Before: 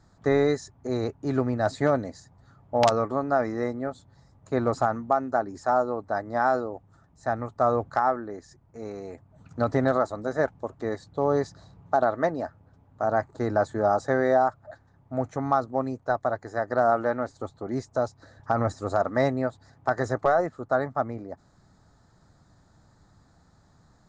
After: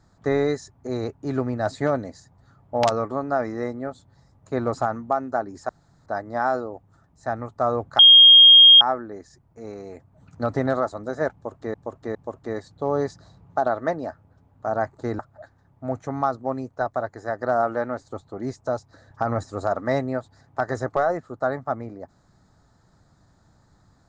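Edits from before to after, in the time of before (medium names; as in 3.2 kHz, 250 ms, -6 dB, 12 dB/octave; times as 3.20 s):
5.69–6.06 s: room tone
7.99 s: add tone 3.24 kHz -6.5 dBFS 0.82 s
10.51–10.92 s: loop, 3 plays
13.55–14.48 s: delete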